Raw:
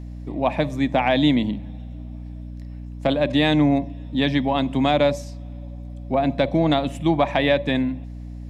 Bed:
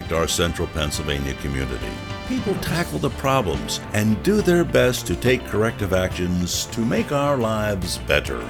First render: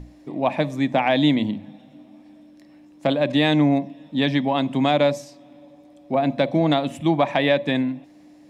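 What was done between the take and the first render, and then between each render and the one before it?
mains-hum notches 60/120/180/240 Hz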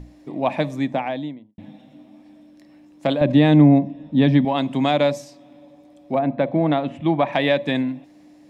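0:00.62–0:01.58: fade out and dull
0:03.21–0:04.45: spectral tilt −3 dB per octave
0:06.18–0:07.31: low-pass filter 1,600 Hz → 3,400 Hz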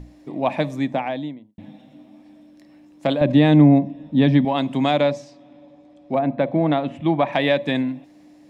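0:05.01–0:06.12: high-frequency loss of the air 85 metres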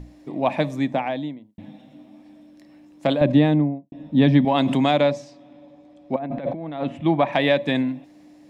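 0:03.22–0:03.92: fade out and dull
0:04.47–0:04.91: envelope flattener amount 70%
0:06.16–0:06.84: compressor whose output falls as the input rises −29 dBFS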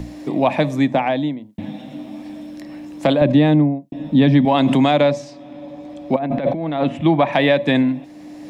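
in parallel at −0.5 dB: brickwall limiter −12.5 dBFS, peak gain reduction 7 dB
on the sum: multiband upward and downward compressor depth 40%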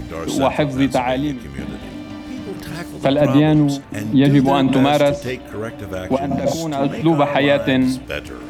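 mix in bed −7.5 dB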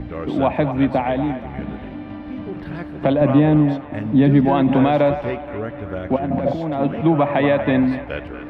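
high-frequency loss of the air 460 metres
delay with a band-pass on its return 238 ms, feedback 46%, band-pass 1,300 Hz, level −8 dB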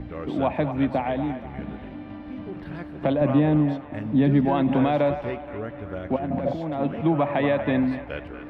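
level −5.5 dB

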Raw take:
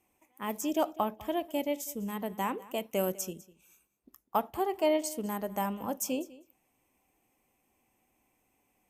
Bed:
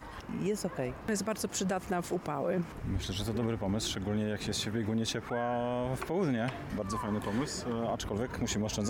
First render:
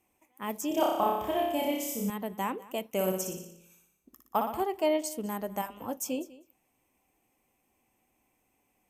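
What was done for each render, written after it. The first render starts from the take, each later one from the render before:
0:00.68–0:02.10: flutter between parallel walls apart 5.2 metres, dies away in 0.94 s
0:02.90–0:04.64: flutter between parallel walls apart 10.1 metres, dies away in 0.7 s
0:05.61–0:06.22: notch comb filter 200 Hz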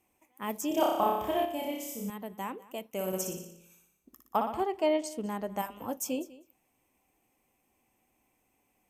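0:01.45–0:03.13: clip gain −5 dB
0:04.36–0:05.59: high-frequency loss of the air 50 metres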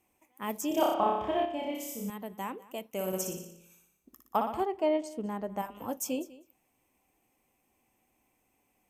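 0:00.94–0:01.75: low-pass filter 3,800 Hz
0:04.65–0:05.75: high-shelf EQ 2,200 Hz −8.5 dB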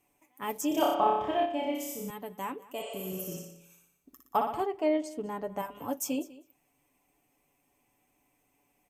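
0:02.81–0:03.32: healed spectral selection 390–10,000 Hz both
comb filter 7 ms, depth 52%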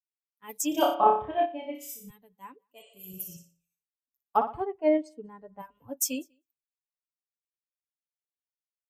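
spectral dynamics exaggerated over time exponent 1.5
multiband upward and downward expander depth 100%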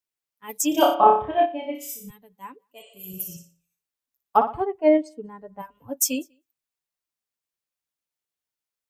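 level +6 dB
brickwall limiter −3 dBFS, peak gain reduction 1 dB

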